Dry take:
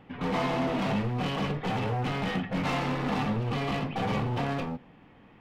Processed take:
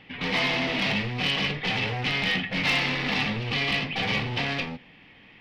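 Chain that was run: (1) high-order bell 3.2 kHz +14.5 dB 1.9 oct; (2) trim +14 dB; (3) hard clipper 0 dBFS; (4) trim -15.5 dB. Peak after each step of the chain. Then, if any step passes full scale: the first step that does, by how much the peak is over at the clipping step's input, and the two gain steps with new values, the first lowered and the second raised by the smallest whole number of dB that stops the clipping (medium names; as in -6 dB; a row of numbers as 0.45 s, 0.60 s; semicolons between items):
-9.0 dBFS, +5.0 dBFS, 0.0 dBFS, -15.5 dBFS; step 2, 5.0 dB; step 2 +9 dB, step 4 -10.5 dB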